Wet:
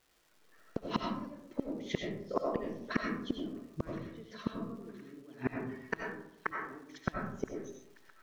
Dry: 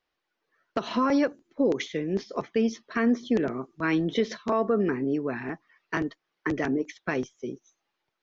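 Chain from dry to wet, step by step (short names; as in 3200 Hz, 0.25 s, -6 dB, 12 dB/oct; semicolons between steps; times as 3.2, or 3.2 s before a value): low shelf 360 Hz +7.5 dB; flipped gate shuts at -21 dBFS, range -34 dB; on a send: thin delay 1.018 s, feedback 54%, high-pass 1600 Hz, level -18.5 dB; on the sum: crackle 310/s -59 dBFS; digital reverb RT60 0.79 s, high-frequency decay 0.4×, pre-delay 50 ms, DRR 0 dB; gain +3 dB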